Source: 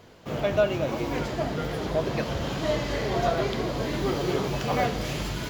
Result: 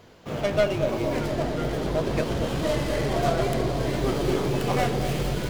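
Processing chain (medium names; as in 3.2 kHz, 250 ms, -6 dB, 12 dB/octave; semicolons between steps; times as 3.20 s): tracing distortion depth 0.25 ms; bucket-brigade echo 232 ms, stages 1024, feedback 75%, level -5.5 dB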